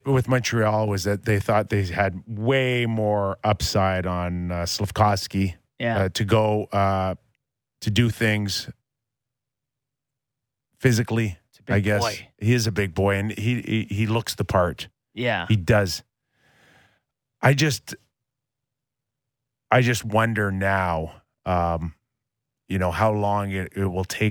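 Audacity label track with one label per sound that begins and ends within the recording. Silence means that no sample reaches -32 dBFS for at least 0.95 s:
10.830000	15.980000	sound
17.430000	17.950000	sound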